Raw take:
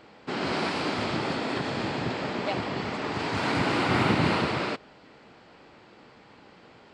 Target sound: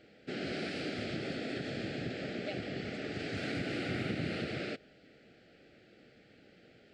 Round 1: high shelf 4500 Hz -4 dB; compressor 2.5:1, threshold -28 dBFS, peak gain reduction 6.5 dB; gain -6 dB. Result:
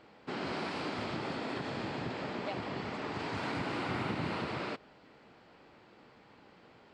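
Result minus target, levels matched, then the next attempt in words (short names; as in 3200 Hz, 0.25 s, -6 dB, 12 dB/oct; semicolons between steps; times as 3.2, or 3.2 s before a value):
1000 Hz band +9.0 dB
Butterworth band-stop 1000 Hz, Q 1.2; high shelf 4500 Hz -4 dB; compressor 2.5:1, threshold -28 dBFS, peak gain reduction 6.5 dB; gain -6 dB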